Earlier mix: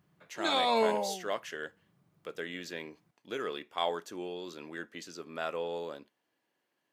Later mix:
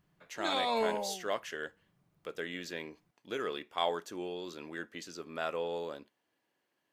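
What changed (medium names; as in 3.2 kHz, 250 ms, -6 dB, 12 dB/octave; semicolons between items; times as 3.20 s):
background -4.0 dB; master: remove high-pass 88 Hz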